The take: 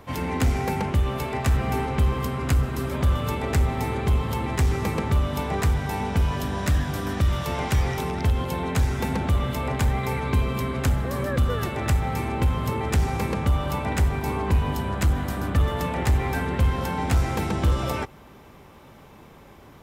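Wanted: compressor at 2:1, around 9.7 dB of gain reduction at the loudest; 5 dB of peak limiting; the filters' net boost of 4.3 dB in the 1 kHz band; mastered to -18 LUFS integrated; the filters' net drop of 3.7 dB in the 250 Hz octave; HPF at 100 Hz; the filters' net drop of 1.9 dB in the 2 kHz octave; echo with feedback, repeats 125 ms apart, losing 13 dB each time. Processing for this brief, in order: high-pass 100 Hz; peaking EQ 250 Hz -5 dB; peaking EQ 1 kHz +6.5 dB; peaking EQ 2 kHz -4.5 dB; compression 2:1, threshold -39 dBFS; peak limiter -26.5 dBFS; feedback delay 125 ms, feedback 22%, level -13 dB; trim +18 dB

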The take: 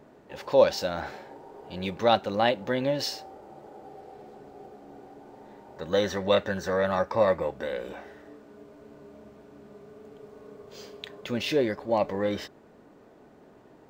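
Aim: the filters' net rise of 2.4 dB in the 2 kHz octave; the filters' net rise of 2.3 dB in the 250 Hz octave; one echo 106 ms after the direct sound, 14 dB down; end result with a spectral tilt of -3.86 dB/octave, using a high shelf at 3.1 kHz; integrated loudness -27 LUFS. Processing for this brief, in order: peaking EQ 250 Hz +3 dB; peaking EQ 2 kHz +5 dB; treble shelf 3.1 kHz -6 dB; delay 106 ms -14 dB; trim -1 dB

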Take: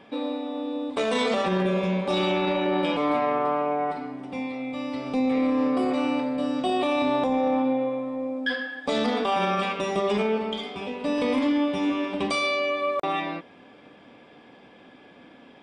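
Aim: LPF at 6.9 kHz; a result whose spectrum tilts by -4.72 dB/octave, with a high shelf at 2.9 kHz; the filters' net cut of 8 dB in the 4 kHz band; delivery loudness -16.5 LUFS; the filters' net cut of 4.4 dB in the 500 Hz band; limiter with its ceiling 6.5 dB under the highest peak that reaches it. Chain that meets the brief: low-pass 6.9 kHz; peaking EQ 500 Hz -5 dB; treble shelf 2.9 kHz -8.5 dB; peaking EQ 4 kHz -3.5 dB; trim +14 dB; peak limiter -8 dBFS

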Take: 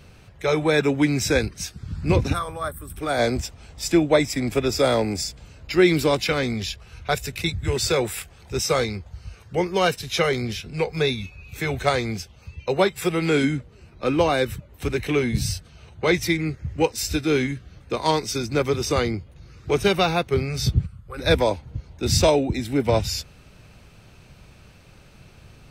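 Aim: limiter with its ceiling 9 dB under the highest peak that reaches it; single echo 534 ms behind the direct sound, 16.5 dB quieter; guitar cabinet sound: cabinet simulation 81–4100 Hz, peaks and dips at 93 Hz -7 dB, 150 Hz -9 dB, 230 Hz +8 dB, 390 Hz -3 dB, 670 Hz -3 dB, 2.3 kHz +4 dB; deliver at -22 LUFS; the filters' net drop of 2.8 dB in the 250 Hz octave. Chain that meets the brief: peaking EQ 250 Hz -5 dB; peak limiter -15 dBFS; cabinet simulation 81–4100 Hz, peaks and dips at 93 Hz -7 dB, 150 Hz -9 dB, 230 Hz +8 dB, 390 Hz -3 dB, 670 Hz -3 dB, 2.3 kHz +4 dB; delay 534 ms -16.5 dB; trim +6 dB

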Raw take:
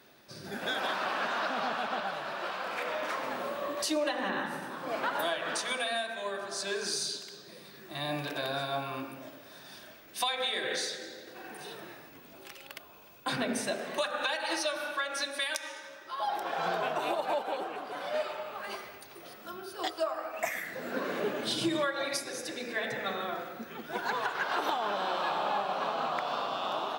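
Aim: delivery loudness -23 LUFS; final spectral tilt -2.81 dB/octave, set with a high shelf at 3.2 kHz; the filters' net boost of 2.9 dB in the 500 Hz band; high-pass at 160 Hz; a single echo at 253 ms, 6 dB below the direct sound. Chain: high-pass 160 Hz; peaking EQ 500 Hz +4 dB; treble shelf 3.2 kHz -4.5 dB; delay 253 ms -6 dB; trim +9 dB

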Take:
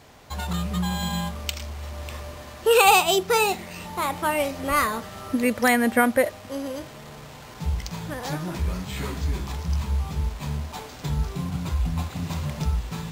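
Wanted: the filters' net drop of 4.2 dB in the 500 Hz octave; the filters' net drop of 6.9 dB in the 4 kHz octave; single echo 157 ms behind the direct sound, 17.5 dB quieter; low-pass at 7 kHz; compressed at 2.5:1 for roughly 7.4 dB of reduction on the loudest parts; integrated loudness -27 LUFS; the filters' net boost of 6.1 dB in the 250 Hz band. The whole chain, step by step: low-pass 7 kHz; peaking EQ 250 Hz +8.5 dB; peaking EQ 500 Hz -7 dB; peaking EQ 4 kHz -9 dB; compression 2.5:1, threshold -24 dBFS; delay 157 ms -17.5 dB; trim +2 dB

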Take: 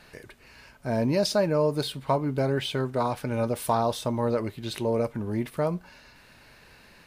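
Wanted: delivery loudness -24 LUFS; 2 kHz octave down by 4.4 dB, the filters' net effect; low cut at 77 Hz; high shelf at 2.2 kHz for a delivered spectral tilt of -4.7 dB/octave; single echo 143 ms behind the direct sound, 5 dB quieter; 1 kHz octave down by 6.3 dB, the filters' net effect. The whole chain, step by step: high-pass 77 Hz; peaking EQ 1 kHz -8.5 dB; peaking EQ 2 kHz -7.5 dB; treble shelf 2.2 kHz +8.5 dB; delay 143 ms -5 dB; trim +3 dB

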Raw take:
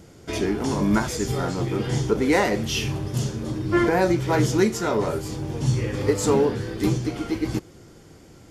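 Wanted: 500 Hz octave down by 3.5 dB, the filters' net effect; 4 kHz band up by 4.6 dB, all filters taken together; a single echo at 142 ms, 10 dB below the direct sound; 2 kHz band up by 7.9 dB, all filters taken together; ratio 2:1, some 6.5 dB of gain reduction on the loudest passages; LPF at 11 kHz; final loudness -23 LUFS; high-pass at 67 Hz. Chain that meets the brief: high-pass 67 Hz; low-pass 11 kHz; peaking EQ 500 Hz -5 dB; peaking EQ 2 kHz +9 dB; peaking EQ 4 kHz +3 dB; compression 2:1, threshold -26 dBFS; delay 142 ms -10 dB; trim +4 dB

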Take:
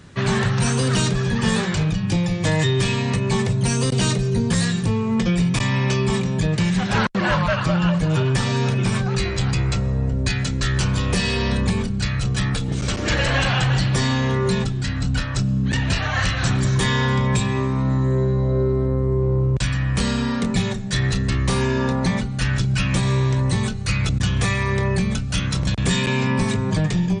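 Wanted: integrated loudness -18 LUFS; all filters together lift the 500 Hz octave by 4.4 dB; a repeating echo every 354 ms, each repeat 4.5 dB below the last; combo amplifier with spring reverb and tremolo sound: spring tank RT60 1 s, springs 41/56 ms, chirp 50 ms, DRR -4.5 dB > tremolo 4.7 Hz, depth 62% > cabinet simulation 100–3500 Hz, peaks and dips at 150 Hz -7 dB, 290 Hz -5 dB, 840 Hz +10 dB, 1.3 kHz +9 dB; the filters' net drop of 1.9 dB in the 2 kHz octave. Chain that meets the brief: peaking EQ 500 Hz +6 dB; peaking EQ 2 kHz -5.5 dB; feedback delay 354 ms, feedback 60%, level -4.5 dB; spring tank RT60 1 s, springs 41/56 ms, chirp 50 ms, DRR -4.5 dB; tremolo 4.7 Hz, depth 62%; cabinet simulation 100–3500 Hz, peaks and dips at 150 Hz -7 dB, 290 Hz -5 dB, 840 Hz +10 dB, 1.3 kHz +9 dB; trim -2.5 dB

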